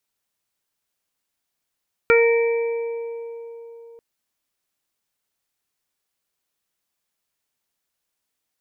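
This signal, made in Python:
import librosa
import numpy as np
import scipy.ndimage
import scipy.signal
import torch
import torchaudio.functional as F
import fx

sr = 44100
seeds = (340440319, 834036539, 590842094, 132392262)

y = fx.additive(sr, length_s=1.89, hz=464.0, level_db=-12.0, upper_db=(-16.0, -3, -12.5, -5), decay_s=3.76, upper_decays_s=(3.37, 0.21, 1.34, 1.81))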